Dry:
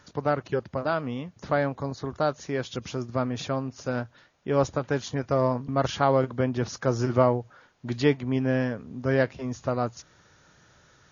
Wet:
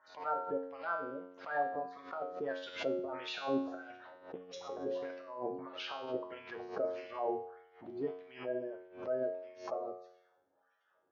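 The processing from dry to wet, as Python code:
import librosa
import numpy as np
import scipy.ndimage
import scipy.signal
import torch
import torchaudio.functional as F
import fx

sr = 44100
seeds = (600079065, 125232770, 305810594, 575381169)

y = fx.spec_quant(x, sr, step_db=30)
y = fx.doppler_pass(y, sr, speed_mps=12, closest_m=8.1, pass_at_s=4.16)
y = scipy.signal.sosfilt(scipy.signal.cheby1(2, 1.0, 4100.0, 'lowpass', fs=sr, output='sos'), y)
y = fx.peak_eq(y, sr, hz=650.0, db=9.0, octaves=0.81)
y = fx.hum_notches(y, sr, base_hz=60, count=9)
y = fx.over_compress(y, sr, threshold_db=-33.0, ratio=-0.5)
y = fx.wah_lfo(y, sr, hz=1.6, low_hz=350.0, high_hz=2700.0, q=2.0)
y = fx.comb_fb(y, sr, f0_hz=91.0, decay_s=0.71, harmonics='all', damping=0.0, mix_pct=90)
y = fx.pre_swell(y, sr, db_per_s=130.0)
y = F.gain(torch.from_numpy(y), 15.0).numpy()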